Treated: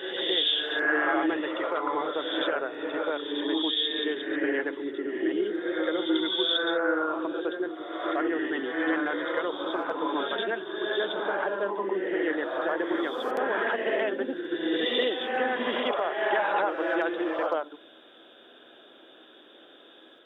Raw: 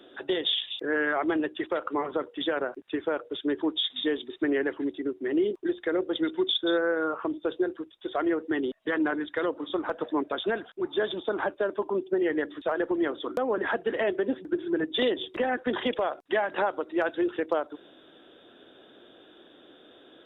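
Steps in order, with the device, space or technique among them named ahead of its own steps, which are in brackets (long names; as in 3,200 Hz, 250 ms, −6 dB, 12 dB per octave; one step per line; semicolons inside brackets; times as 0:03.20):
ghost voice (reversed playback; convolution reverb RT60 1.2 s, pre-delay 64 ms, DRR −1.5 dB; reversed playback; high-pass filter 490 Hz 6 dB per octave)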